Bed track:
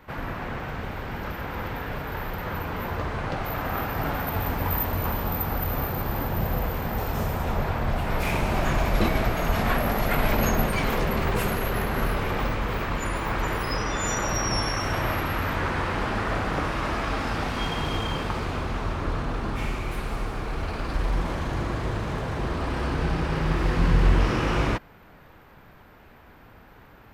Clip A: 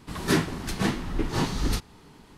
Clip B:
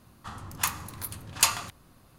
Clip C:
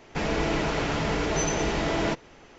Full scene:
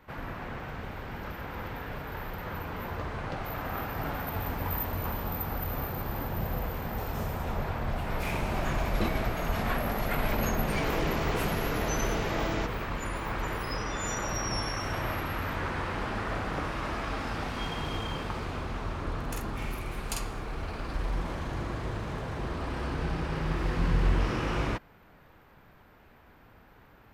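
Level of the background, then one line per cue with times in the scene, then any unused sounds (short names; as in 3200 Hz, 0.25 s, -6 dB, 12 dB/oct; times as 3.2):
bed track -6 dB
10.52 add C -7 dB
18.69 add B -16.5 dB + doubler 47 ms -2 dB
not used: A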